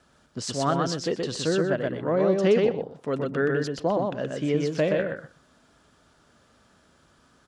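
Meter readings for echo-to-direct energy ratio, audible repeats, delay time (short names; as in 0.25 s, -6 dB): -3.0 dB, 2, 0.124 s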